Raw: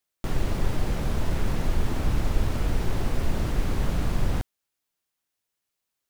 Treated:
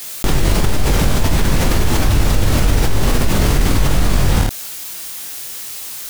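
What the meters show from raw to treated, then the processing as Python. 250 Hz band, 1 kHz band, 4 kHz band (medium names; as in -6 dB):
+12.0 dB, +13.0 dB, +17.5 dB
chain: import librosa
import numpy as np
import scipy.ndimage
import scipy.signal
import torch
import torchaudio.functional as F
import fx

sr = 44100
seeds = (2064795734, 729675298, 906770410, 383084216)

p1 = fx.high_shelf(x, sr, hz=3100.0, db=8.5)
p2 = p1 + fx.room_early_taps(p1, sr, ms=(21, 51, 79), db=(-3.5, -6.5, -11.5), dry=0)
p3 = fx.env_flatten(p2, sr, amount_pct=70)
y = p3 * 10.0 ** (4.5 / 20.0)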